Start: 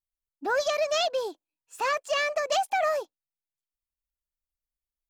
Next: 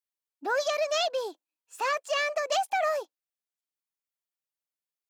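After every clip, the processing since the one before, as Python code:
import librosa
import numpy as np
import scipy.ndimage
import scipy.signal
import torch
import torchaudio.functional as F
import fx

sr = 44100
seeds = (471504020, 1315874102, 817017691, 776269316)

y = scipy.signal.sosfilt(scipy.signal.bessel(2, 290.0, 'highpass', norm='mag', fs=sr, output='sos'), x)
y = F.gain(torch.from_numpy(y), -1.0).numpy()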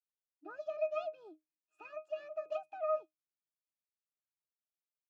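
y = fx.octave_resonator(x, sr, note='D#', decay_s=0.15)
y = fx.tremolo_shape(y, sr, shape='triangle', hz=4.1, depth_pct=40)
y = F.gain(torch.from_numpy(y), 1.0).numpy()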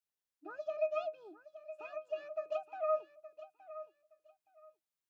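y = fx.echo_feedback(x, sr, ms=869, feedback_pct=21, wet_db=-14)
y = F.gain(torch.from_numpy(y), 1.0).numpy()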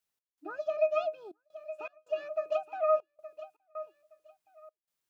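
y = fx.step_gate(x, sr, bpm=80, pattern='x.xxxxx.x', floor_db=-24.0, edge_ms=4.5)
y = F.gain(torch.from_numpy(y), 6.5).numpy()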